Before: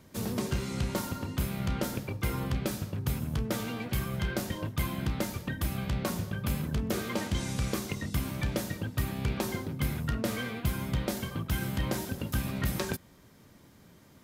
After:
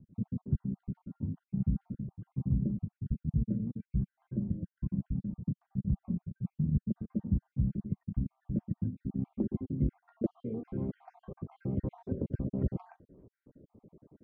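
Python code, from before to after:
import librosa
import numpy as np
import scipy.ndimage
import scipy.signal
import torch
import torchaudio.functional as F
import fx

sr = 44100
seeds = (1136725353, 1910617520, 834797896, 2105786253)

y = fx.spec_dropout(x, sr, seeds[0], share_pct=52)
y = fx.filter_sweep_lowpass(y, sr, from_hz=190.0, to_hz=440.0, start_s=8.34, end_s=10.93, q=1.9)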